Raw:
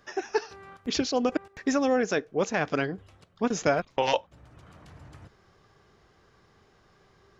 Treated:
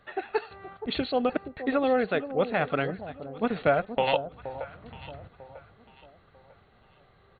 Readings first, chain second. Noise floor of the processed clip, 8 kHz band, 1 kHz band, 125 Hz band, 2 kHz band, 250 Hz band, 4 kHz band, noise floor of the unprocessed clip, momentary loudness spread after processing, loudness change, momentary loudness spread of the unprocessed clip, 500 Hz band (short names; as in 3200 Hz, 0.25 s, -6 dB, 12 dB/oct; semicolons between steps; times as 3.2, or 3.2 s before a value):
-60 dBFS, n/a, +1.0 dB, +1.0 dB, 0.0 dB, -1.5 dB, -2.0 dB, -62 dBFS, 19 LU, -0.5 dB, 7 LU, +1.0 dB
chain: brick-wall FIR low-pass 4500 Hz; comb 1.5 ms, depth 32%; on a send: echo with dull and thin repeats by turns 0.473 s, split 900 Hz, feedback 54%, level -11 dB